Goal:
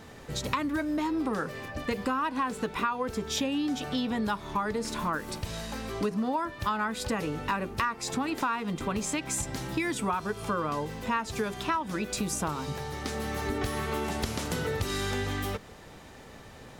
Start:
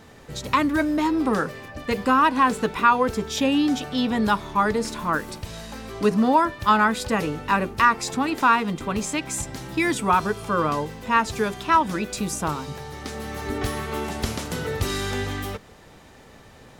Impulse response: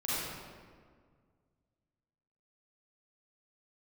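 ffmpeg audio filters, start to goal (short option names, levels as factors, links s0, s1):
-af "acompressor=threshold=0.0447:ratio=6"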